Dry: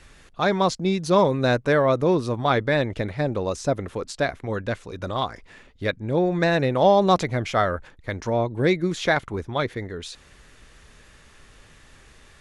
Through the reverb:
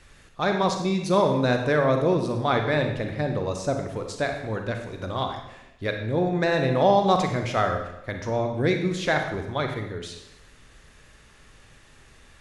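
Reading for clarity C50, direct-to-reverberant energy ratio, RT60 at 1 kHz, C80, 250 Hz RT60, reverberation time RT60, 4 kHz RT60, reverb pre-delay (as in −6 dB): 5.5 dB, 4.0 dB, 0.85 s, 8.5 dB, 0.95 s, 0.90 s, 0.85 s, 32 ms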